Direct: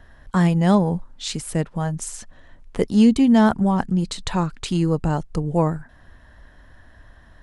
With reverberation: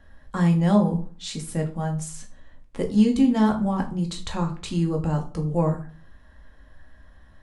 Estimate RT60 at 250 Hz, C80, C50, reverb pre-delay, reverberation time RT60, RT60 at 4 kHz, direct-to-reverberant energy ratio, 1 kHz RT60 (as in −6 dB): 0.50 s, 17.0 dB, 12.5 dB, 4 ms, 0.40 s, 0.30 s, 2.0 dB, 0.40 s